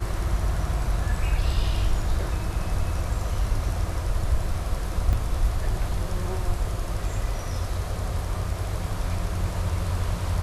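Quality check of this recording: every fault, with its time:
5.13 s: dropout 2.2 ms

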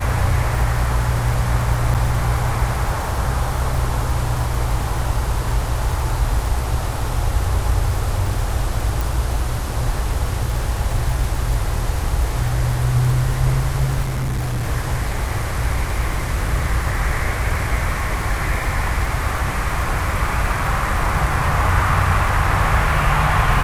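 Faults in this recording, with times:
crackle 70 per s -26 dBFS
1.94–1.95 s: dropout 7.6 ms
9.01 s: pop
14.02–14.66 s: clipped -18.5 dBFS

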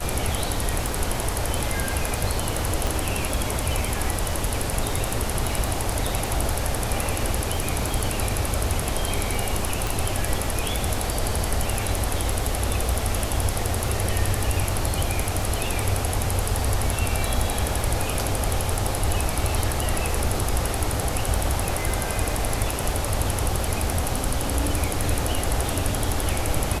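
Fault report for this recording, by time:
crackle 18 per s -27 dBFS
2.87 s: pop
9.87 s: pop

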